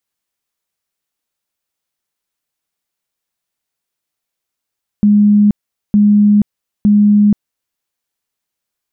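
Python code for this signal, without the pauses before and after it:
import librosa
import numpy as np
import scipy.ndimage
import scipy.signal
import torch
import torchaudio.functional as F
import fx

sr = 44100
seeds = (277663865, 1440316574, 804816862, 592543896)

y = fx.tone_burst(sr, hz=207.0, cycles=99, every_s=0.91, bursts=3, level_db=-5.5)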